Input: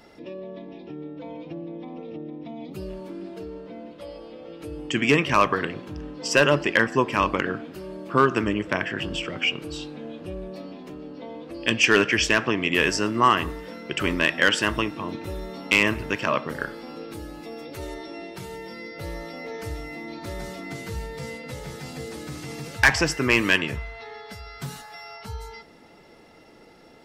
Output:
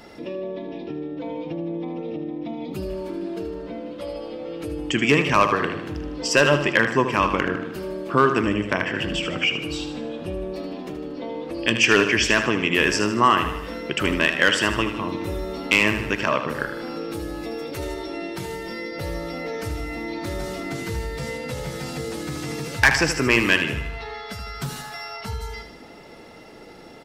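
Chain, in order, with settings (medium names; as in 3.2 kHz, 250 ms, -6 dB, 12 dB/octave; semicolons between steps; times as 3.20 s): feedback delay 77 ms, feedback 48%, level -9 dB; in parallel at +1 dB: compression, threshold -35 dBFS, peak gain reduction 21.5 dB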